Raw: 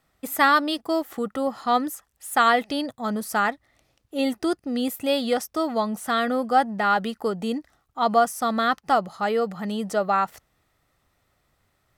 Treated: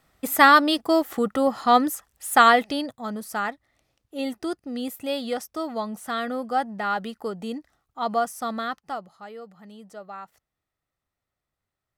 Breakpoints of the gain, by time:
2.41 s +4 dB
3.12 s -5 dB
8.5 s -5 dB
9.28 s -17 dB

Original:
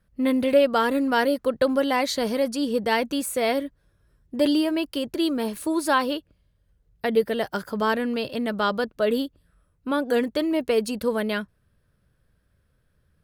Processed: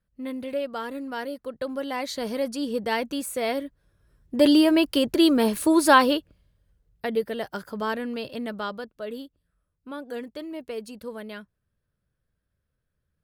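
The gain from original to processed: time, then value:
1.5 s -11 dB
2.42 s -3.5 dB
3.64 s -3.5 dB
4.72 s +5.5 dB
5.99 s +5.5 dB
7.21 s -5 dB
8.45 s -5 dB
8.93 s -12 dB

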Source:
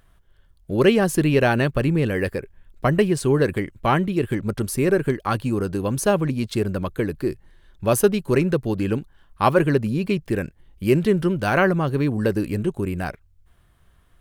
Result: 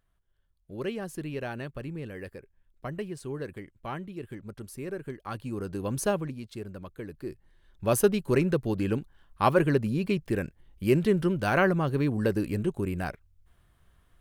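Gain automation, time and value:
5.01 s -17 dB
6.03 s -6 dB
6.43 s -16 dB
7 s -16 dB
7.96 s -5 dB

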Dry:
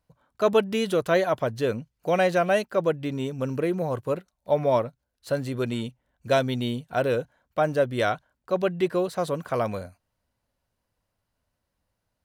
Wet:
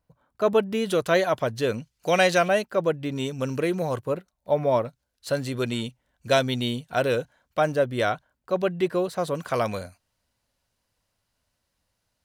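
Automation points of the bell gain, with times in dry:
bell 5700 Hz 3 oct
-4 dB
from 0.87 s +5 dB
from 1.74 s +11.5 dB
from 2.48 s +1 dB
from 3.16 s +8.5 dB
from 3.99 s -1.5 dB
from 4.85 s +6.5 dB
from 7.72 s +0.5 dB
from 9.35 s +8.5 dB

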